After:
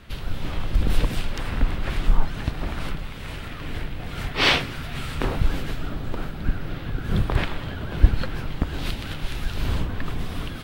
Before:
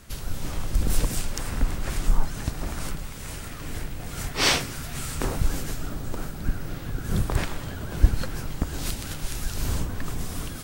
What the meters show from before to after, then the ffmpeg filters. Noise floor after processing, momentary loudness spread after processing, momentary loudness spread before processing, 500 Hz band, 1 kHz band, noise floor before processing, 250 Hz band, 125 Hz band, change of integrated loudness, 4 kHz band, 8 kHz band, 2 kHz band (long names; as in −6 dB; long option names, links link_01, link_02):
−34 dBFS, 11 LU, 11 LU, +2.5 dB, +3.0 dB, −36 dBFS, +2.5 dB, +2.5 dB, +2.0 dB, +2.5 dB, −11.0 dB, +4.0 dB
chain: -af "highshelf=frequency=4800:width_type=q:width=1.5:gain=-12,volume=2.5dB"